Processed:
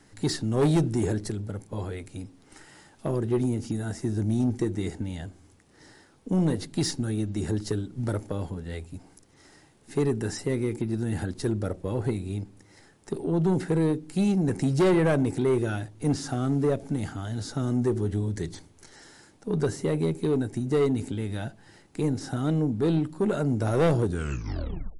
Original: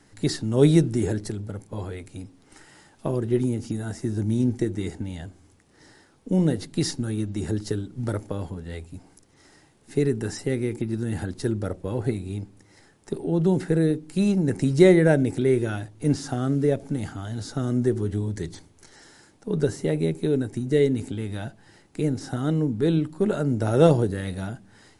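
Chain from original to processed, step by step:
turntable brake at the end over 0.96 s
soft clipping −17 dBFS, distortion −11 dB
every ending faded ahead of time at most 430 dB per second

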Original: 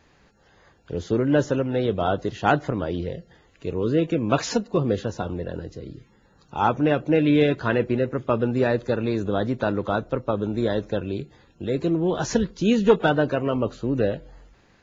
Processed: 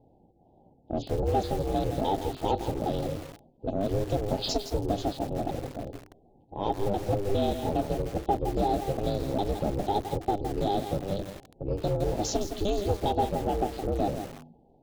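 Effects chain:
pitch shifter gated in a rhythm −7 semitones, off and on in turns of 204 ms
elliptic band-stop filter 620–3,400 Hz, stop band 40 dB
mains-hum notches 50/100/150/200 Hz
low-pass that shuts in the quiet parts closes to 570 Hz, open at −21.5 dBFS
low-shelf EQ 390 Hz −6.5 dB
downward compressor 3 to 1, threshold −30 dBFS, peak gain reduction 9.5 dB
ring modulation 200 Hz
in parallel at −6 dB: soft clipping −35.5 dBFS, distortion −8 dB
on the sum: hollow resonant body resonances 830/1,300/2,600 Hz, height 7 dB, ringing for 35 ms
feedback echo at a low word length 165 ms, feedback 35%, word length 7 bits, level −7.5 dB
level +5 dB

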